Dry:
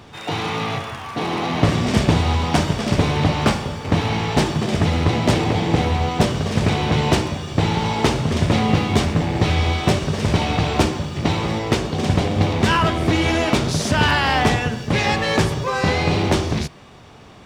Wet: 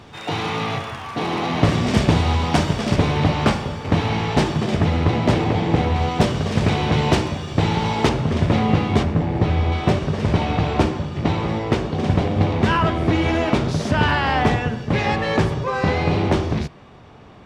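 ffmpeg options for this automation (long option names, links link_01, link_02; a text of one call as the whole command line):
ffmpeg -i in.wav -af "asetnsamples=nb_out_samples=441:pad=0,asendcmd='2.96 lowpass f 4500;4.75 lowpass f 2600;5.96 lowpass f 5700;8.09 lowpass f 2300;9.03 lowpass f 1100;9.72 lowpass f 2000',lowpass=frequency=7600:poles=1" out.wav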